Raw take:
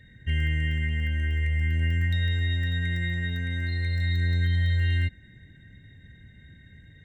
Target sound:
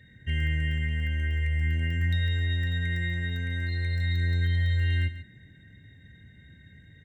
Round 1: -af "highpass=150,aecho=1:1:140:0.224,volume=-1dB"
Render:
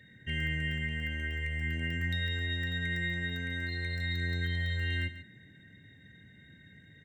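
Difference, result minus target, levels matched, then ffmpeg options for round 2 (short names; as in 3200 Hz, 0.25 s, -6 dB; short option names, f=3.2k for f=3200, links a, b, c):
125 Hz band -3.5 dB
-af "highpass=63,aecho=1:1:140:0.224,volume=-1dB"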